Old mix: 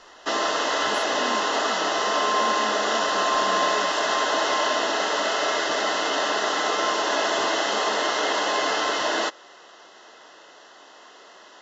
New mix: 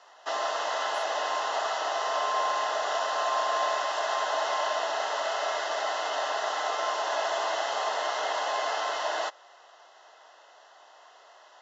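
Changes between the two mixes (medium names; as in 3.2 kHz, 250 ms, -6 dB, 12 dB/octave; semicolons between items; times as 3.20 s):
background: remove high-pass 440 Hz 12 dB/octave; master: add ladder high-pass 590 Hz, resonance 45%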